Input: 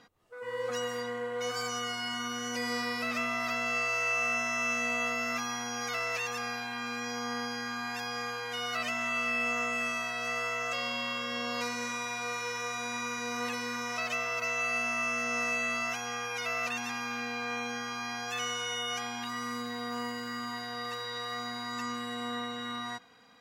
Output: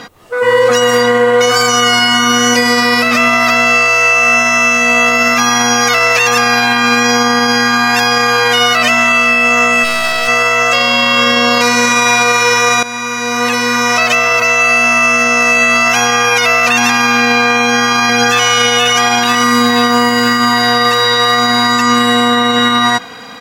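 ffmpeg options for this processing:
ffmpeg -i in.wav -filter_complex "[0:a]asplit=3[link_01][link_02][link_03];[link_01]afade=type=out:start_time=9.83:duration=0.02[link_04];[link_02]aeval=exprs='max(val(0),0)':channel_layout=same,afade=type=in:start_time=9.83:duration=0.02,afade=type=out:start_time=10.27:duration=0.02[link_05];[link_03]afade=type=in:start_time=10.27:duration=0.02[link_06];[link_04][link_05][link_06]amix=inputs=3:normalize=0,asplit=2[link_07][link_08];[link_08]afade=type=in:start_time=17.61:duration=0.01,afade=type=out:start_time=18.47:duration=0.01,aecho=0:1:480|960|1440|1920|2400:0.841395|0.336558|0.134623|0.0538493|0.0215397[link_09];[link_07][link_09]amix=inputs=2:normalize=0,asplit=2[link_10][link_11];[link_10]atrim=end=12.83,asetpts=PTS-STARTPTS,afade=type=out:start_time=12.826:duration=0.004:curve=hsin:silence=0.149624[link_12];[link_11]atrim=start=12.83,asetpts=PTS-STARTPTS,afade=type=in:duration=2.21:silence=0.149624[link_13];[link_12][link_13]concat=n=2:v=0:a=1,lowshelf=frequency=130:gain=-3.5,alimiter=level_in=30dB:limit=-1dB:release=50:level=0:latency=1,volume=-1dB" out.wav

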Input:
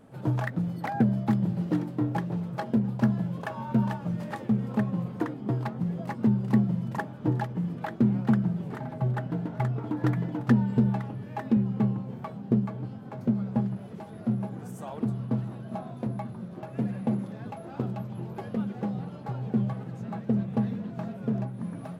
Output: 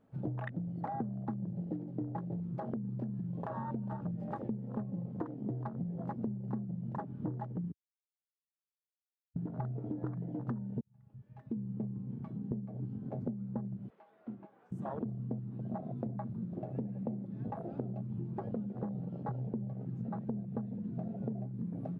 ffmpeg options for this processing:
ffmpeg -i in.wav -filter_complex "[0:a]asettb=1/sr,asplit=3[link_01][link_02][link_03];[link_01]atrim=end=2.494[link_04];[link_02]atrim=start=2.49:end=3.92,asetpts=PTS-STARTPTS,afade=type=in:duration=0.004:curve=qsin,afade=type=out:start_time=1.426:duration=0.004:curve=qsin,acompressor=threshold=-31dB:ratio=2.5:attack=3.2:release=140:knee=1:detection=peak[link_05];[link_03]atrim=start=3.916[link_06];[link_04][link_05]acrossfade=duration=0.004:curve1=hsin:curve2=qsin[link_07];[link_07][link_06]acrossfade=duration=0.004:curve1=qsin:curve2=hsin,asettb=1/sr,asplit=3[link_08][link_09][link_10];[link_08]atrim=end=13.904[link_11];[link_09]atrim=start=13.9:end=14.72,asetpts=PTS-STARTPTS,afade=type=in:duration=0.004:curve=qsin,afade=type=out:start_time=0.816:duration=0.004:curve=qsin,highpass=600,lowpass=3000[link_12];[link_10]atrim=start=14.716[link_13];[link_11][link_12]acrossfade=duration=0.004:curve1=hsin:curve2=qsin[link_14];[link_14][link_13]acrossfade=duration=0.004:curve1=qsin:curve2=hsin,asplit=4[link_15][link_16][link_17][link_18];[link_15]atrim=end=7.72,asetpts=PTS-STARTPTS,afade=type=out:start_time=7.716:duration=0.004:curve=hsin[link_19];[link_16]atrim=start=7.72:end=9.36,asetpts=PTS-STARTPTS,volume=0[link_20];[link_17]atrim=start=9.36:end=10.81,asetpts=PTS-STARTPTS,afade=type=in:duration=0.004:curve=hsin,afade=type=out:start_time=1.446:duration=0.004:curve=hsin[link_21];[link_18]atrim=start=10.81,asetpts=PTS-STARTPTS,afade=type=in:duration=2.1[link_22];[link_19][link_20][link_21][link_22]concat=n=4:v=0:a=1,afwtdn=0.02,lowpass=frequency=3200:poles=1,acompressor=threshold=-37dB:ratio=12,volume=2.5dB" out.wav

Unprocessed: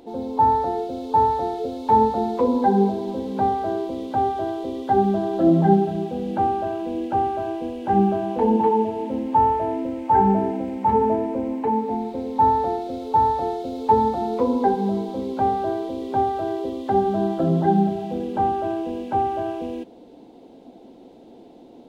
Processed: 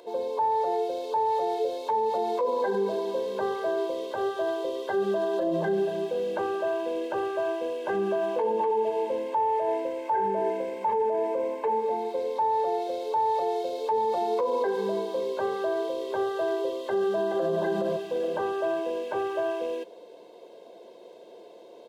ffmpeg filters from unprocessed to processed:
ffmpeg -i in.wav -filter_complex "[0:a]asplit=2[link_01][link_02];[link_02]afade=type=in:start_time=16.89:duration=0.01,afade=type=out:start_time=17.54:duration=0.01,aecho=0:1:420|840|1260|1680:0.707946|0.212384|0.0637151|0.0191145[link_03];[link_01][link_03]amix=inputs=2:normalize=0,highpass=390,aecho=1:1:1.9:0.83,alimiter=limit=-19dB:level=0:latency=1:release=56" out.wav

